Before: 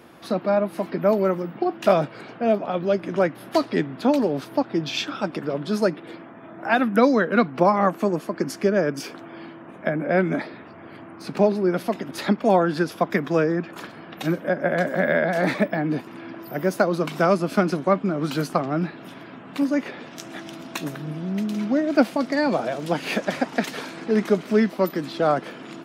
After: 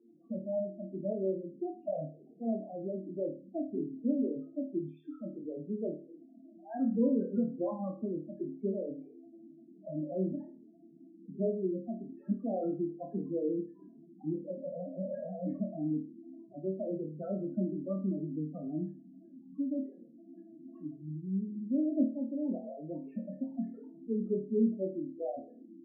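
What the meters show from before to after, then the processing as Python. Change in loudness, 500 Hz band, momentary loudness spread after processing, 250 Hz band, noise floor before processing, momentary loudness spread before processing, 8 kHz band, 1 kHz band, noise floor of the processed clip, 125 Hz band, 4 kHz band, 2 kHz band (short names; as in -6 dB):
-13.0 dB, -14.5 dB, 17 LU, -10.0 dB, -42 dBFS, 17 LU, under -35 dB, -24.5 dB, -57 dBFS, -12.5 dB, under -40 dB, under -40 dB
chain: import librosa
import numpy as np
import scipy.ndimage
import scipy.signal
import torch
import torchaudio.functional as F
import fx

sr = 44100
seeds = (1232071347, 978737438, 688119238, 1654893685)

p1 = fx.wiener(x, sr, points=9)
p2 = fx.spec_topn(p1, sr, count=4)
p3 = fx.ladder_bandpass(p2, sr, hz=280.0, resonance_pct=25)
y = p3 + fx.room_flutter(p3, sr, wall_m=4.5, rt60_s=0.37, dry=0)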